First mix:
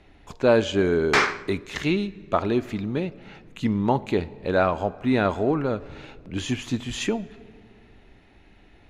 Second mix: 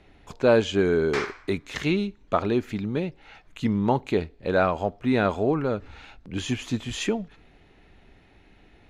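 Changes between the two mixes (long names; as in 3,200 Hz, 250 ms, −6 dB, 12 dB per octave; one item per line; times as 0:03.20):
background −10.5 dB
reverb: off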